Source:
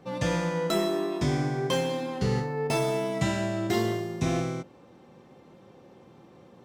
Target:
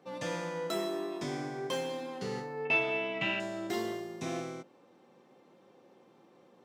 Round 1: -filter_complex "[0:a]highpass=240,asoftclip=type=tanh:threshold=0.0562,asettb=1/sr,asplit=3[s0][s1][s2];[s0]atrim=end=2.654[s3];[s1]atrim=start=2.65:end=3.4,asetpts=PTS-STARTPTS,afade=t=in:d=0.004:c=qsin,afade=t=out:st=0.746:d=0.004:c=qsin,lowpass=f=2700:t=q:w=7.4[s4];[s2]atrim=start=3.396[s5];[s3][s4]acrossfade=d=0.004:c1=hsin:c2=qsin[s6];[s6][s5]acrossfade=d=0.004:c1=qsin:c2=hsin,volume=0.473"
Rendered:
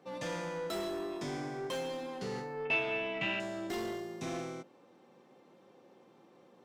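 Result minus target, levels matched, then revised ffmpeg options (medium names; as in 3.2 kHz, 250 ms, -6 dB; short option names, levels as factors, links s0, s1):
saturation: distortion +18 dB
-filter_complex "[0:a]highpass=240,asoftclip=type=tanh:threshold=0.224,asettb=1/sr,asplit=3[s0][s1][s2];[s0]atrim=end=2.654[s3];[s1]atrim=start=2.65:end=3.4,asetpts=PTS-STARTPTS,afade=t=in:d=0.004:c=qsin,afade=t=out:st=0.746:d=0.004:c=qsin,lowpass=f=2700:t=q:w=7.4[s4];[s2]atrim=start=3.396[s5];[s3][s4]acrossfade=d=0.004:c1=hsin:c2=qsin[s6];[s6][s5]acrossfade=d=0.004:c1=qsin:c2=hsin,volume=0.473"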